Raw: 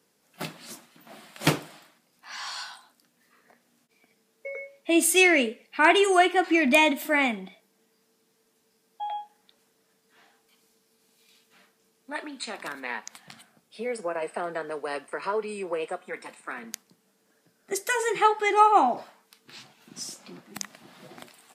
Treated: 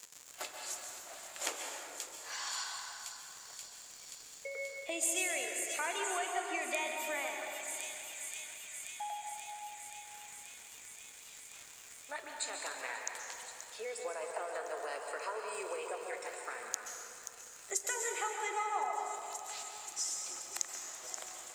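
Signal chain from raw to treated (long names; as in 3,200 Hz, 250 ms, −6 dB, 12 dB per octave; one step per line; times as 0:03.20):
high-pass filter 450 Hz 24 dB per octave
on a send: delay with a high-pass on its return 530 ms, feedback 78%, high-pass 4,100 Hz, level −12.5 dB
on the sum: surface crackle 190 per second −40 dBFS
downward compressor 3 to 1, threshold −36 dBFS, peak gain reduction 17 dB
parametric band 7,100 Hz +13.5 dB 0.42 octaves
dense smooth reverb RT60 2.9 s, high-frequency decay 0.5×, pre-delay 115 ms, DRR 1.5 dB
one half of a high-frequency compander encoder only
level −4 dB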